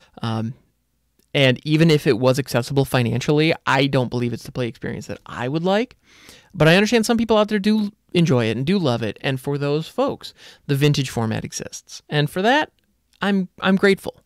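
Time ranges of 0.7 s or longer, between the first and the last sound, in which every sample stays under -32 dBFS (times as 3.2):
0.52–1.35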